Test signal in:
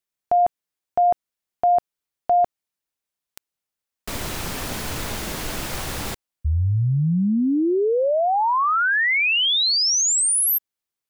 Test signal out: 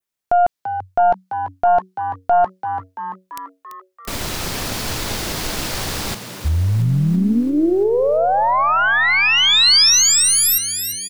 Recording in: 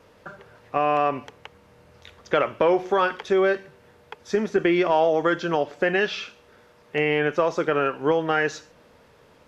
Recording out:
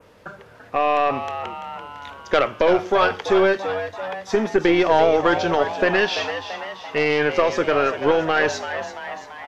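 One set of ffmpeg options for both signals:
ffmpeg -i in.wav -filter_complex "[0:a]aeval=exprs='0.422*(cos(1*acos(clip(val(0)/0.422,-1,1)))-cos(1*PI/2))+0.15*(cos(2*acos(clip(val(0)/0.422,-1,1)))-cos(2*PI/2))+0.0168*(cos(4*acos(clip(val(0)/0.422,-1,1)))-cos(4*PI/2))':channel_layout=same,asplit=8[link_01][link_02][link_03][link_04][link_05][link_06][link_07][link_08];[link_02]adelay=338,afreqshift=93,volume=-10dB[link_09];[link_03]adelay=676,afreqshift=186,volume=-14.4dB[link_10];[link_04]adelay=1014,afreqshift=279,volume=-18.9dB[link_11];[link_05]adelay=1352,afreqshift=372,volume=-23.3dB[link_12];[link_06]adelay=1690,afreqshift=465,volume=-27.7dB[link_13];[link_07]adelay=2028,afreqshift=558,volume=-32.2dB[link_14];[link_08]adelay=2366,afreqshift=651,volume=-36.6dB[link_15];[link_01][link_09][link_10][link_11][link_12][link_13][link_14][link_15]amix=inputs=8:normalize=0,adynamicequalizer=threshold=0.0112:dfrequency=4700:dqfactor=1.3:tfrequency=4700:tqfactor=1.3:attack=5:release=100:ratio=0.375:range=2.5:mode=boostabove:tftype=bell,volume=3dB" out.wav

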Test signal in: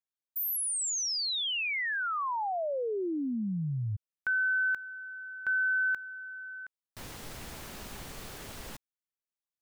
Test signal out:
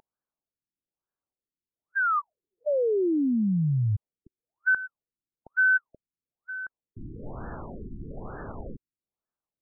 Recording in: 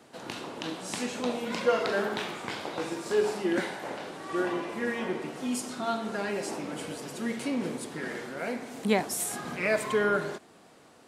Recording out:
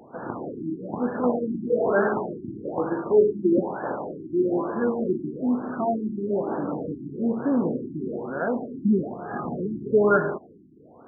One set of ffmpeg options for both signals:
ffmpeg -i in.wav -af "aeval=exprs='val(0)+0.0178*sin(2*PI*2900*n/s)':channel_layout=same,afftfilt=real='re*lt(b*sr/1024,370*pow(1800/370,0.5+0.5*sin(2*PI*1.1*pts/sr)))':imag='im*lt(b*sr/1024,370*pow(1800/370,0.5+0.5*sin(2*PI*1.1*pts/sr)))':win_size=1024:overlap=0.75,volume=8dB" out.wav

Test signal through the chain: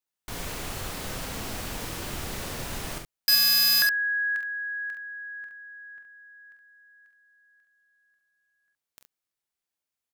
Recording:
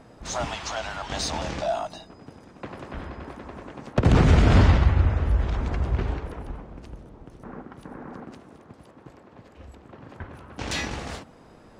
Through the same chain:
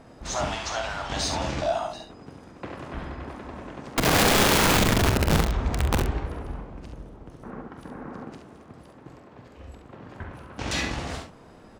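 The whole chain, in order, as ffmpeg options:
ffmpeg -i in.wav -af "aeval=exprs='(mod(6.31*val(0)+1,2)-1)/6.31':channel_layout=same,aecho=1:1:30|45|69:0.188|0.376|0.447" out.wav

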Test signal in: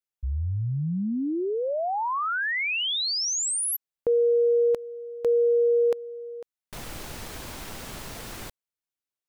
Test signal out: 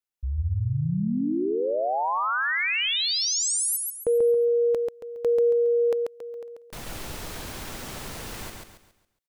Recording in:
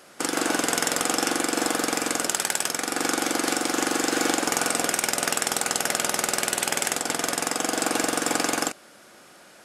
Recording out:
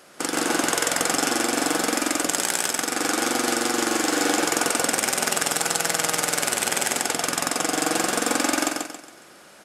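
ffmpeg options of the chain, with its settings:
ffmpeg -i in.wav -af "aecho=1:1:138|276|414|552|690:0.668|0.241|0.0866|0.0312|0.0112" out.wav

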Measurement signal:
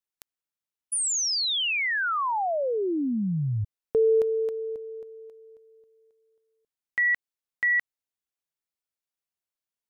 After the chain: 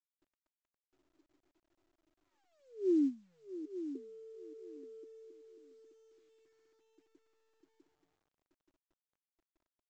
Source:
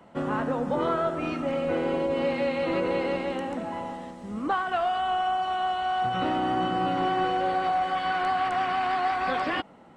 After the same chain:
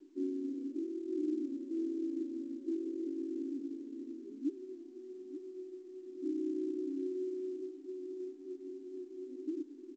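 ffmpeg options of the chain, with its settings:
ffmpeg -i in.wav -af "areverse,acompressor=threshold=-34dB:ratio=5:attack=0.12:release=206:knee=6:detection=rms,areverse,asoftclip=type=hard:threshold=-36.5dB,asuperpass=centerf=320:order=8:qfactor=3,aecho=1:1:879|1758|2637:0.251|0.0527|0.0111,volume=10.5dB" -ar 16000 -c:a pcm_mulaw out.wav

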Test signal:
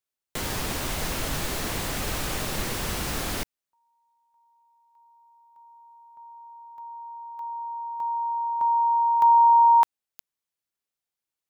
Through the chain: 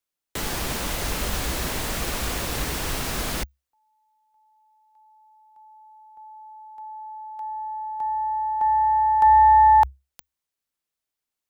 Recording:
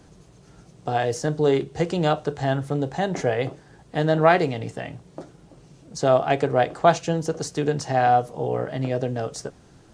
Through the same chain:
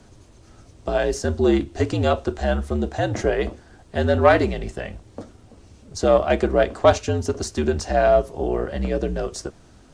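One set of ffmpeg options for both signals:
ffmpeg -i in.wav -af "aeval=exprs='0.75*(cos(1*acos(clip(val(0)/0.75,-1,1)))-cos(1*PI/2))+0.0473*(cos(4*acos(clip(val(0)/0.75,-1,1)))-cos(4*PI/2))':channel_layout=same,afreqshift=-67,volume=2dB" out.wav

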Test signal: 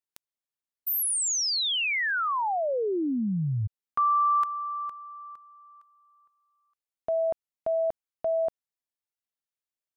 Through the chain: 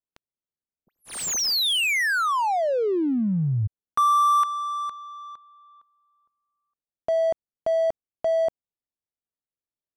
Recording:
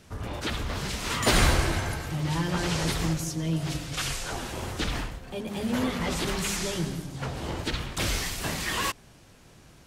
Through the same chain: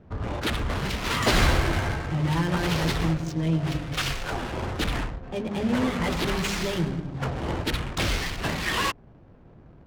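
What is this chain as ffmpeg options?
ffmpeg -i in.wav -filter_complex "[0:a]equalizer=frequency=13000:width=1.4:gain=-13,asplit=2[link_01][link_02];[link_02]alimiter=limit=-20dB:level=0:latency=1:release=345,volume=-0.5dB[link_03];[link_01][link_03]amix=inputs=2:normalize=0,adynamicsmooth=sensitivity=6.5:basefreq=670,volume=-1.5dB" out.wav

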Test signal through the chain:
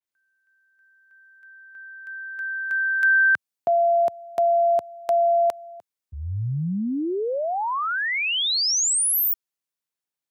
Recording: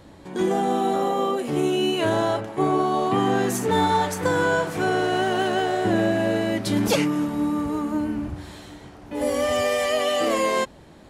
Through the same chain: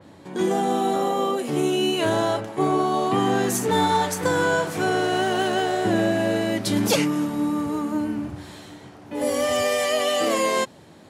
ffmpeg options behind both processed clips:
ffmpeg -i in.wav -af "asoftclip=type=hard:threshold=-11.5dB,highpass=frequency=89:width=0.5412,highpass=frequency=89:width=1.3066,adynamicequalizer=threshold=0.0112:dfrequency=3400:dqfactor=0.7:tfrequency=3400:tqfactor=0.7:attack=5:release=100:ratio=0.375:range=2:mode=boostabove:tftype=highshelf" out.wav

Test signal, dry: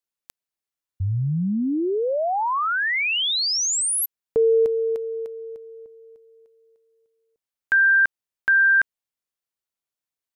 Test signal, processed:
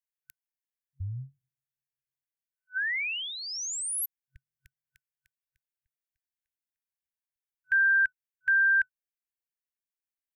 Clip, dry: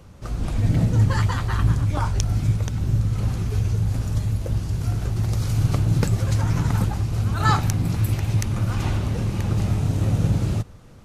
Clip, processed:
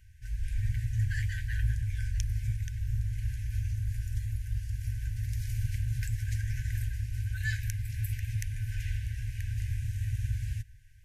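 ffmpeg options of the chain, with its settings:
ffmpeg -i in.wav -af "equalizer=frequency=125:width_type=o:width=1:gain=-6,equalizer=frequency=250:width_type=o:width=1:gain=-12,equalizer=frequency=500:width_type=o:width=1:gain=8,equalizer=frequency=4000:width_type=o:width=1:gain=-10,equalizer=frequency=8000:width_type=o:width=1:gain=-4,afftfilt=real='re*(1-between(b*sr/4096,130,1500))':imag='im*(1-between(b*sr/4096,130,1500))':win_size=4096:overlap=0.75,volume=-5dB" out.wav

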